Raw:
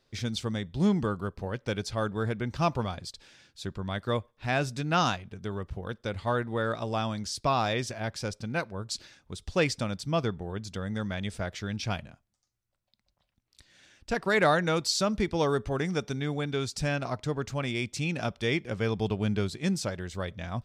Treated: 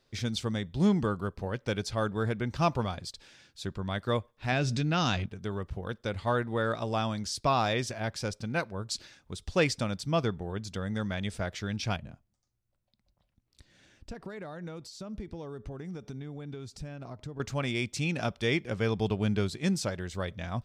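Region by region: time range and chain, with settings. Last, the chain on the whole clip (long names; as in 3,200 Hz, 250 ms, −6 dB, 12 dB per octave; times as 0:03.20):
0:04.52–0:05.26: low-pass filter 5,800 Hz + parametric band 970 Hz −7 dB 2 octaves + envelope flattener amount 70%
0:11.96–0:17.40: downward compressor 5 to 1, threshold −41 dBFS + tilt shelving filter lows +5 dB, about 670 Hz
whole clip: no processing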